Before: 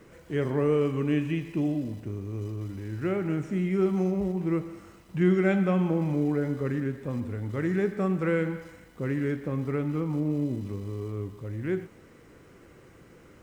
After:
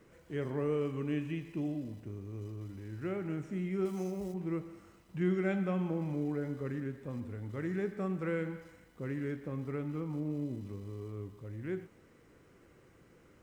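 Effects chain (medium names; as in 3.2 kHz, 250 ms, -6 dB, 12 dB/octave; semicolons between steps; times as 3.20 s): 3.85–4.34 s: tone controls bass -4 dB, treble +12 dB; trim -8.5 dB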